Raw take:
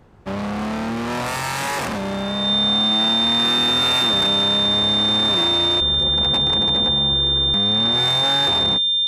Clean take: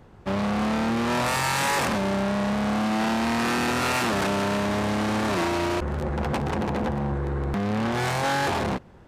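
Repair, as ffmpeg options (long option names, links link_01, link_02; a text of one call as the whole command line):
ffmpeg -i in.wav -af "bandreject=frequency=3600:width=30" out.wav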